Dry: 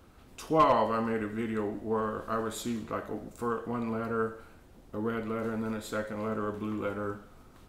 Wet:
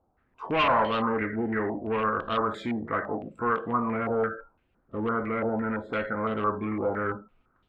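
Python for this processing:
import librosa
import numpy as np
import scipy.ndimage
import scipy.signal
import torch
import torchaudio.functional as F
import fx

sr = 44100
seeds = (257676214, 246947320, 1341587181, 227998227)

y = fx.noise_reduce_blind(x, sr, reduce_db=21)
y = 10.0 ** (-27.0 / 20.0) * np.tanh(y / 10.0 ** (-27.0 / 20.0))
y = fx.filter_held_lowpass(y, sr, hz=5.9, low_hz=780.0, high_hz=3300.0)
y = y * 10.0 ** (4.5 / 20.0)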